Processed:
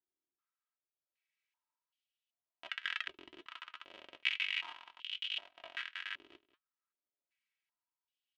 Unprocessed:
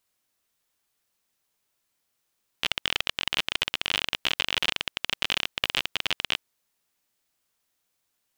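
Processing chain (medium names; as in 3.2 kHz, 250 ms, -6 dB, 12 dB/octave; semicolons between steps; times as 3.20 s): peaking EQ 520 Hz -9 dB 2.1 oct; band-stop 630 Hz, Q 16; comb 3.1 ms, depth 71%; flange 2 Hz, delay 4.9 ms, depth 2.2 ms, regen -68%; tremolo 0.68 Hz, depth 56%; 4.29–6.34 s: chorus 1 Hz, delay 19.5 ms, depth 3.8 ms; delay 183 ms -17 dB; step-sequenced band-pass 2.6 Hz 380–3000 Hz; trim +4.5 dB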